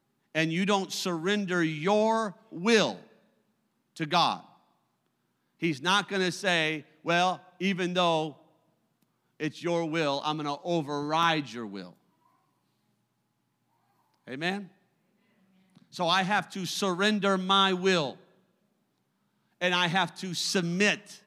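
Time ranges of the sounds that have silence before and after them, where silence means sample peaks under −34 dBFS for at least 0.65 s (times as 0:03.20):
0:03.97–0:04.37
0:05.63–0:08.30
0:09.40–0:11.84
0:14.28–0:14.60
0:15.96–0:18.12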